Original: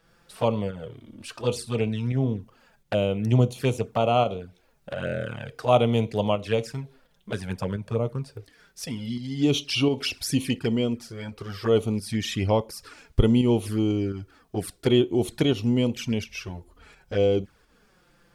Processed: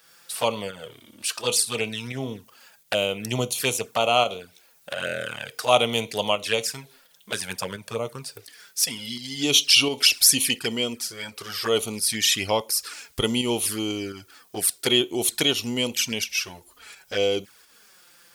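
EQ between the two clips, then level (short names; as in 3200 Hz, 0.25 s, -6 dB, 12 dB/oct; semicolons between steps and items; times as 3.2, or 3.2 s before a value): tilt +4.5 dB/oct; +3.0 dB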